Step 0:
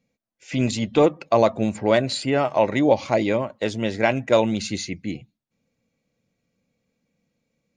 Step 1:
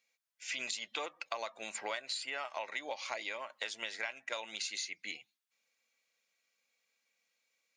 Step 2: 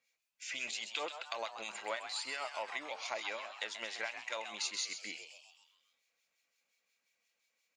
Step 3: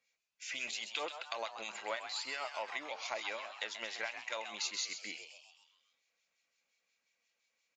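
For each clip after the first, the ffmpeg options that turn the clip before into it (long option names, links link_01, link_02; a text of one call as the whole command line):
ffmpeg -i in.wav -af "highpass=1400,acompressor=threshold=-38dB:ratio=10,volume=2.5dB" out.wav
ffmpeg -i in.wav -filter_complex "[0:a]acrossover=split=1800[link_01][link_02];[link_01]aeval=exprs='val(0)*(1-0.7/2+0.7/2*cos(2*PI*5.7*n/s))':channel_layout=same[link_03];[link_02]aeval=exprs='val(0)*(1-0.7/2-0.7/2*cos(2*PI*5.7*n/s))':channel_layout=same[link_04];[link_03][link_04]amix=inputs=2:normalize=0,asplit=7[link_05][link_06][link_07][link_08][link_09][link_10][link_11];[link_06]adelay=131,afreqshift=150,volume=-9dB[link_12];[link_07]adelay=262,afreqshift=300,volume=-14.2dB[link_13];[link_08]adelay=393,afreqshift=450,volume=-19.4dB[link_14];[link_09]adelay=524,afreqshift=600,volume=-24.6dB[link_15];[link_10]adelay=655,afreqshift=750,volume=-29.8dB[link_16];[link_11]adelay=786,afreqshift=900,volume=-35dB[link_17];[link_05][link_12][link_13][link_14][link_15][link_16][link_17]amix=inputs=7:normalize=0,volume=2.5dB" out.wav
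ffmpeg -i in.wav -af "aeval=exprs='0.112*(cos(1*acos(clip(val(0)/0.112,-1,1)))-cos(1*PI/2))+0.002*(cos(2*acos(clip(val(0)/0.112,-1,1)))-cos(2*PI/2))':channel_layout=same,aresample=16000,aresample=44100" out.wav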